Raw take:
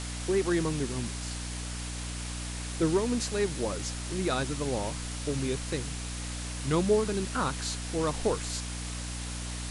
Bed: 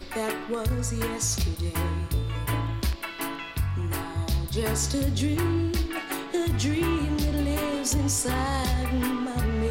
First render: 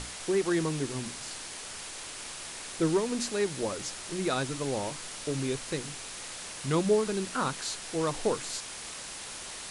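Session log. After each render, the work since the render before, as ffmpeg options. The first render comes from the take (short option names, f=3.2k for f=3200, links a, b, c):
-af "bandreject=f=60:t=h:w=6,bandreject=f=120:t=h:w=6,bandreject=f=180:t=h:w=6,bandreject=f=240:t=h:w=6,bandreject=f=300:t=h:w=6"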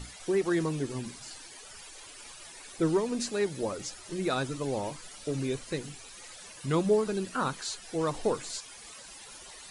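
-af "afftdn=nr=14:nf=-42"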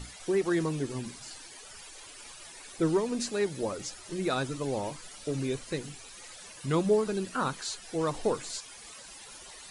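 -af anull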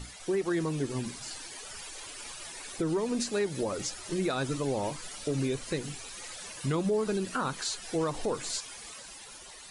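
-af "dynaudnorm=f=180:g=11:m=4.5dB,alimiter=limit=-21.5dB:level=0:latency=1:release=159"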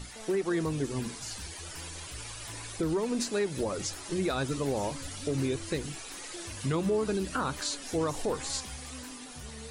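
-filter_complex "[1:a]volume=-19.5dB[a];[0:a][a]amix=inputs=2:normalize=0"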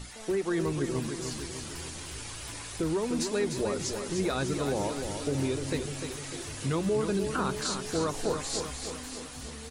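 -af "aecho=1:1:300|600|900|1200|1500|1800|2100:0.447|0.255|0.145|0.0827|0.0472|0.0269|0.0153"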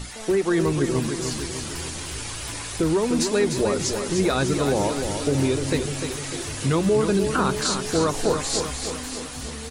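-af "volume=8dB"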